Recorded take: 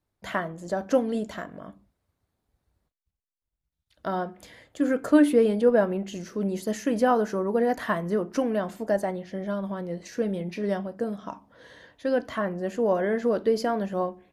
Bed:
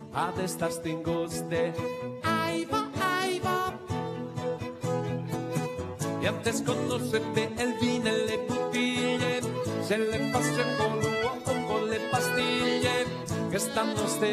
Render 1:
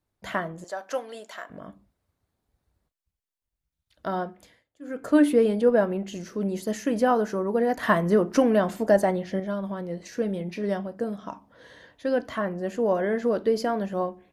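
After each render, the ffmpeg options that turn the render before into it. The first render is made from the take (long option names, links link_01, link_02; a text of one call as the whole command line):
ffmpeg -i in.wav -filter_complex "[0:a]asettb=1/sr,asplit=3[link_01][link_02][link_03];[link_01]atrim=end=0.644[link_04];[link_02]atrim=start=0.64:end=1.5,asetpts=PTS-STARTPTS,afade=type=in:duration=0.004:curve=qsin,afade=type=out:start_time=0.856:duration=0.004:curve=qsin,highpass=750[link_05];[link_03]atrim=start=1.496[link_06];[link_04][link_05]acrossfade=duration=0.004:curve1=hsin:curve2=qsin[link_07];[link_07][link_06]acrossfade=duration=0.004:curve1=qsin:curve2=hsin,asettb=1/sr,asplit=3[link_08][link_09][link_10];[link_08]atrim=end=7.834[link_11];[link_09]atrim=start=7.83:end=9.4,asetpts=PTS-STARTPTS,afade=type=in:duration=0.004:curve=qsin,afade=type=out:start_time=1.566:duration=0.004:curve=qsin,acontrast=44[link_12];[link_10]atrim=start=9.396[link_13];[link_11][link_12]acrossfade=duration=0.004:curve1=hsin:curve2=qsin[link_14];[link_14][link_13]acrossfade=duration=0.004:curve1=qsin:curve2=hsin,asplit=3[link_15][link_16][link_17];[link_15]atrim=end=4.64,asetpts=PTS-STARTPTS,afade=type=out:start_time=4.23:duration=0.41:silence=0.0707946[link_18];[link_16]atrim=start=4.64:end=4.8,asetpts=PTS-STARTPTS,volume=-23dB[link_19];[link_17]atrim=start=4.8,asetpts=PTS-STARTPTS,afade=type=in:duration=0.41:silence=0.0707946[link_20];[link_18][link_19][link_20]concat=n=3:v=0:a=1" out.wav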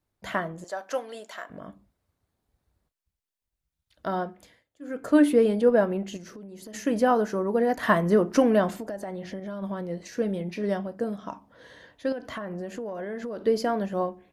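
ffmpeg -i in.wav -filter_complex "[0:a]asplit=3[link_01][link_02][link_03];[link_01]afade=type=out:start_time=6.16:duration=0.02[link_04];[link_02]acompressor=threshold=-39dB:ratio=16:attack=3.2:release=140:knee=1:detection=peak,afade=type=in:start_time=6.16:duration=0.02,afade=type=out:start_time=6.73:duration=0.02[link_05];[link_03]afade=type=in:start_time=6.73:duration=0.02[link_06];[link_04][link_05][link_06]amix=inputs=3:normalize=0,asettb=1/sr,asplit=3[link_07][link_08][link_09];[link_07]atrim=end=8.704[link_10];[link_08]atrim=start=8.7:end=9.62,asetpts=PTS-STARTPTS,afade=type=in:duration=0.004:curve=qsin,afade=type=out:start_time=0.916:duration=0.004:curve=qsin,acompressor=threshold=-31dB:ratio=8:attack=3.2:release=140:knee=1:detection=peak[link_11];[link_09]atrim=start=9.616[link_12];[link_10][link_11]acrossfade=duration=0.004:curve1=hsin:curve2=qsin[link_13];[link_13][link_12]acrossfade=duration=0.004:curve1=qsin:curve2=hsin,asettb=1/sr,asplit=3[link_14][link_15][link_16];[link_14]atrim=end=12.124[link_17];[link_15]atrim=start=12.12:end=13.45,asetpts=PTS-STARTPTS,afade=type=in:duration=0.004:curve=qsin,afade=type=out:start_time=1.326:duration=0.004:curve=qsin,acompressor=threshold=-30dB:ratio=12:attack=3.2:release=140:knee=1:detection=peak[link_18];[link_16]atrim=start=13.446[link_19];[link_17][link_18]acrossfade=duration=0.004:curve1=hsin:curve2=qsin[link_20];[link_20][link_19]acrossfade=duration=0.004:curve1=qsin:curve2=hsin" out.wav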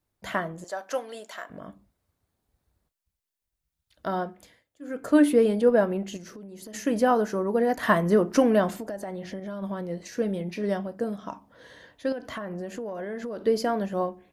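ffmpeg -i in.wav -af "highshelf=frequency=7300:gain=4" out.wav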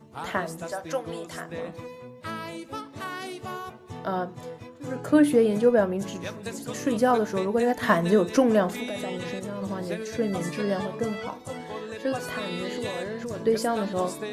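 ffmpeg -i in.wav -i bed.wav -filter_complex "[1:a]volume=-7.5dB[link_01];[0:a][link_01]amix=inputs=2:normalize=0" out.wav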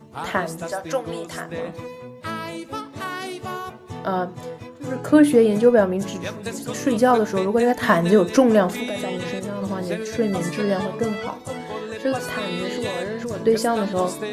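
ffmpeg -i in.wav -af "volume=5dB,alimiter=limit=-3dB:level=0:latency=1" out.wav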